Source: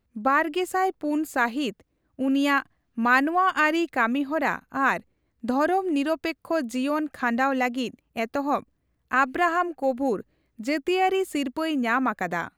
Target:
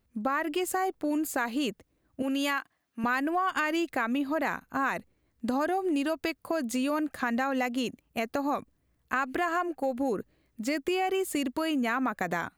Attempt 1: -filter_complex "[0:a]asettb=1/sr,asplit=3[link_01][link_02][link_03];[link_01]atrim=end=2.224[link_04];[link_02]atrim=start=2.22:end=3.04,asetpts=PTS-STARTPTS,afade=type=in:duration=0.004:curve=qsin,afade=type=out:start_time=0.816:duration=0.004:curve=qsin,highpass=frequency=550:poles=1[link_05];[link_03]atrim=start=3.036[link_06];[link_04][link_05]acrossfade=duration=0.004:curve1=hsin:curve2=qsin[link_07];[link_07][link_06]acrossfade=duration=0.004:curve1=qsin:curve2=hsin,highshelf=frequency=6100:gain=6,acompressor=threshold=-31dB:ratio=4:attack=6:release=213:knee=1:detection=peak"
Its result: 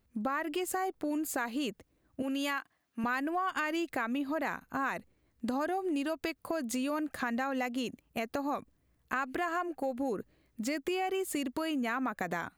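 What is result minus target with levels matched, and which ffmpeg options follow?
downward compressor: peak gain reduction +4.5 dB
-filter_complex "[0:a]asettb=1/sr,asplit=3[link_01][link_02][link_03];[link_01]atrim=end=2.224[link_04];[link_02]atrim=start=2.22:end=3.04,asetpts=PTS-STARTPTS,afade=type=in:duration=0.004:curve=qsin,afade=type=out:start_time=0.816:duration=0.004:curve=qsin,highpass=frequency=550:poles=1[link_05];[link_03]atrim=start=3.036[link_06];[link_04][link_05]acrossfade=duration=0.004:curve1=hsin:curve2=qsin[link_07];[link_07][link_06]acrossfade=duration=0.004:curve1=qsin:curve2=hsin,highshelf=frequency=6100:gain=6,acompressor=threshold=-25dB:ratio=4:attack=6:release=213:knee=1:detection=peak"

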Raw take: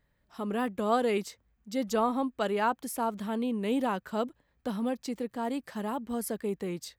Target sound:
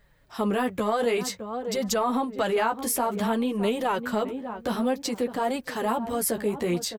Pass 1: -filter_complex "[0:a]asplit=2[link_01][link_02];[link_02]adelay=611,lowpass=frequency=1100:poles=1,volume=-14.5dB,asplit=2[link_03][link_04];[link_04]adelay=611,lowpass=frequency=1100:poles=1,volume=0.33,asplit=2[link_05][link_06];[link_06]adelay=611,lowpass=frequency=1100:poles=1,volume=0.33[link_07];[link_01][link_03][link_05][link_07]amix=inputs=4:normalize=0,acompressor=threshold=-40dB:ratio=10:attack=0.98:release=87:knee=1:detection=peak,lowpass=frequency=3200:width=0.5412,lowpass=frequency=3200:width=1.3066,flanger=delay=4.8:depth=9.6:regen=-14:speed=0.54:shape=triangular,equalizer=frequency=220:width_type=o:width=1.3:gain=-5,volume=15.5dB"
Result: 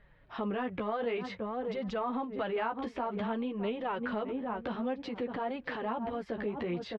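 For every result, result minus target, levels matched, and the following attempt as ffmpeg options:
downward compressor: peak gain reduction +8.5 dB; 4,000 Hz band −4.0 dB
-filter_complex "[0:a]asplit=2[link_01][link_02];[link_02]adelay=611,lowpass=frequency=1100:poles=1,volume=-14.5dB,asplit=2[link_03][link_04];[link_04]adelay=611,lowpass=frequency=1100:poles=1,volume=0.33,asplit=2[link_05][link_06];[link_06]adelay=611,lowpass=frequency=1100:poles=1,volume=0.33[link_07];[link_01][link_03][link_05][link_07]amix=inputs=4:normalize=0,acompressor=threshold=-30.5dB:ratio=10:attack=0.98:release=87:knee=1:detection=peak,lowpass=frequency=3200:width=0.5412,lowpass=frequency=3200:width=1.3066,flanger=delay=4.8:depth=9.6:regen=-14:speed=0.54:shape=triangular,equalizer=frequency=220:width_type=o:width=1.3:gain=-5,volume=15.5dB"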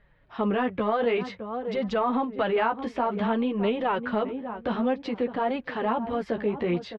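4,000 Hz band −5.0 dB
-filter_complex "[0:a]asplit=2[link_01][link_02];[link_02]adelay=611,lowpass=frequency=1100:poles=1,volume=-14.5dB,asplit=2[link_03][link_04];[link_04]adelay=611,lowpass=frequency=1100:poles=1,volume=0.33,asplit=2[link_05][link_06];[link_06]adelay=611,lowpass=frequency=1100:poles=1,volume=0.33[link_07];[link_01][link_03][link_05][link_07]amix=inputs=4:normalize=0,acompressor=threshold=-30.5dB:ratio=10:attack=0.98:release=87:knee=1:detection=peak,flanger=delay=4.8:depth=9.6:regen=-14:speed=0.54:shape=triangular,equalizer=frequency=220:width_type=o:width=1.3:gain=-5,volume=15.5dB"

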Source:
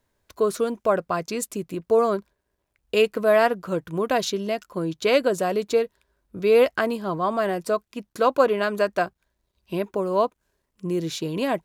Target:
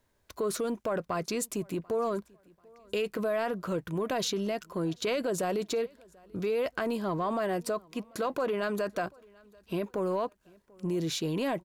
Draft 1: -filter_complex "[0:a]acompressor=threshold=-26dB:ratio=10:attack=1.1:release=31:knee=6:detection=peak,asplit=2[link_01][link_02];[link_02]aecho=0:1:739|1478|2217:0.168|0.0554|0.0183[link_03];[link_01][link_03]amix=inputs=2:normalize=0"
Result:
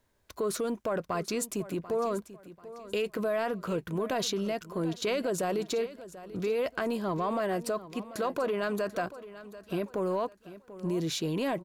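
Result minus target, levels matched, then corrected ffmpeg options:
echo-to-direct +11 dB
-filter_complex "[0:a]acompressor=threshold=-26dB:ratio=10:attack=1.1:release=31:knee=6:detection=peak,asplit=2[link_01][link_02];[link_02]aecho=0:1:739|1478:0.0473|0.0156[link_03];[link_01][link_03]amix=inputs=2:normalize=0"

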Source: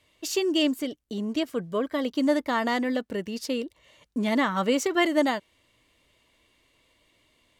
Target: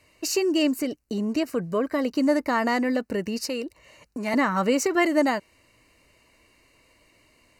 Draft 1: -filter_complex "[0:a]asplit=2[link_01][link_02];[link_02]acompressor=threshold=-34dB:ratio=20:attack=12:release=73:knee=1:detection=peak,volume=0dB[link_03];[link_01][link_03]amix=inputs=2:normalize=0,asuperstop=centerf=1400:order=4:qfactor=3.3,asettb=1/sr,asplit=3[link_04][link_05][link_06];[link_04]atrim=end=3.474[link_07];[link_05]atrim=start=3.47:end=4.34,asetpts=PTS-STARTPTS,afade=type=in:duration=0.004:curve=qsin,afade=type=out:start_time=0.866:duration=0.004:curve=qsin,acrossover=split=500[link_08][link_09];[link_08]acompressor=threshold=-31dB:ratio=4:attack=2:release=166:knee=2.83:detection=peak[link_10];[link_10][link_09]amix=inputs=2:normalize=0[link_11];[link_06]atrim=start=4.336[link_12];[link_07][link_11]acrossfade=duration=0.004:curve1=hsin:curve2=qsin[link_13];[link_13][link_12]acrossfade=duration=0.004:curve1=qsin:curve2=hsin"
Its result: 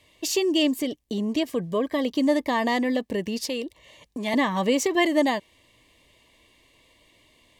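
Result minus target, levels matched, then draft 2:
4,000 Hz band +4.0 dB
-filter_complex "[0:a]asplit=2[link_01][link_02];[link_02]acompressor=threshold=-34dB:ratio=20:attack=12:release=73:knee=1:detection=peak,volume=0dB[link_03];[link_01][link_03]amix=inputs=2:normalize=0,asuperstop=centerf=3400:order=4:qfactor=3.3,asettb=1/sr,asplit=3[link_04][link_05][link_06];[link_04]atrim=end=3.474[link_07];[link_05]atrim=start=3.47:end=4.34,asetpts=PTS-STARTPTS,afade=type=in:duration=0.004:curve=qsin,afade=type=out:start_time=0.866:duration=0.004:curve=qsin,acrossover=split=500[link_08][link_09];[link_08]acompressor=threshold=-31dB:ratio=4:attack=2:release=166:knee=2.83:detection=peak[link_10];[link_10][link_09]amix=inputs=2:normalize=0[link_11];[link_06]atrim=start=4.336[link_12];[link_07][link_11]acrossfade=duration=0.004:curve1=hsin:curve2=qsin[link_13];[link_13][link_12]acrossfade=duration=0.004:curve1=qsin:curve2=hsin"

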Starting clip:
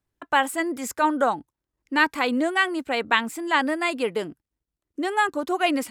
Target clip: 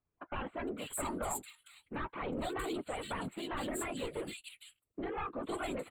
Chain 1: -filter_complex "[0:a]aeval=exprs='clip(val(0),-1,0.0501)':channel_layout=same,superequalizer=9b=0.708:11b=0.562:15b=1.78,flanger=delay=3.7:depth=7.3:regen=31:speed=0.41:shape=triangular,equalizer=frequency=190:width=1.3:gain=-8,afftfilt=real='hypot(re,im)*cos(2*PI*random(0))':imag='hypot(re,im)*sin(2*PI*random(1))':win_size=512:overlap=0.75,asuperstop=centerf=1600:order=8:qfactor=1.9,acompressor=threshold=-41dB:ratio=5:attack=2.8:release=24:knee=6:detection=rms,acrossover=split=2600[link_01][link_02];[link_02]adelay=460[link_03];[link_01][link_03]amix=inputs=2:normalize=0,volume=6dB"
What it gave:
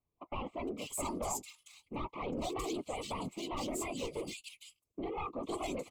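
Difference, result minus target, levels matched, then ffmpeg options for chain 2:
2,000 Hz band −4.5 dB
-filter_complex "[0:a]aeval=exprs='clip(val(0),-1,0.0501)':channel_layout=same,superequalizer=9b=0.708:11b=0.562:15b=1.78,flanger=delay=3.7:depth=7.3:regen=31:speed=0.41:shape=triangular,equalizer=frequency=190:width=1.3:gain=-8,afftfilt=real='hypot(re,im)*cos(2*PI*random(0))':imag='hypot(re,im)*sin(2*PI*random(1))':win_size=512:overlap=0.75,asuperstop=centerf=5700:order=8:qfactor=1.9,acompressor=threshold=-41dB:ratio=5:attack=2.8:release=24:knee=6:detection=rms,acrossover=split=2600[link_01][link_02];[link_02]adelay=460[link_03];[link_01][link_03]amix=inputs=2:normalize=0,volume=6dB"

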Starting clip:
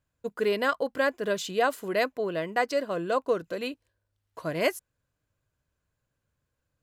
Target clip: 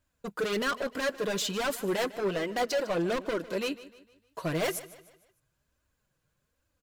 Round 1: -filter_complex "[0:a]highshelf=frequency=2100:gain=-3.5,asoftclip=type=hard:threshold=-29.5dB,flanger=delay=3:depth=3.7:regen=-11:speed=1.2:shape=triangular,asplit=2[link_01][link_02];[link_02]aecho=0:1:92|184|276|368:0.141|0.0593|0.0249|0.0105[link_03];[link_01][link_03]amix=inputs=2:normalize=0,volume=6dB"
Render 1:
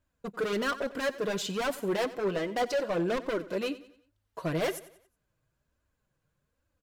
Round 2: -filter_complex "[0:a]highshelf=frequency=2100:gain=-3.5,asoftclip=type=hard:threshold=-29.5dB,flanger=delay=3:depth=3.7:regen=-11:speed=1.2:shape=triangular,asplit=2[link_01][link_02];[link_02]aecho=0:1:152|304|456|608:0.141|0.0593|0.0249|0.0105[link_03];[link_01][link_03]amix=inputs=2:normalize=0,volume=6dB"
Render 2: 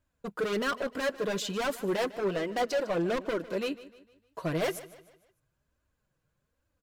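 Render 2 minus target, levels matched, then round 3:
4,000 Hz band −2.5 dB
-filter_complex "[0:a]highshelf=frequency=2100:gain=3,asoftclip=type=hard:threshold=-29.5dB,flanger=delay=3:depth=3.7:regen=-11:speed=1.2:shape=triangular,asplit=2[link_01][link_02];[link_02]aecho=0:1:152|304|456|608:0.141|0.0593|0.0249|0.0105[link_03];[link_01][link_03]amix=inputs=2:normalize=0,volume=6dB"

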